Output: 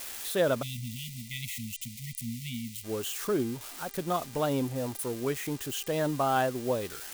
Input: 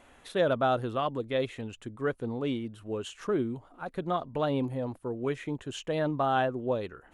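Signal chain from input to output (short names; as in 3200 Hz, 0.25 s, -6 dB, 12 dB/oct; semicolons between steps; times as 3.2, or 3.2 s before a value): switching spikes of -29 dBFS; buzz 400 Hz, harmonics 24, -56 dBFS -1 dB/oct; spectral delete 0.62–2.84, 240–1900 Hz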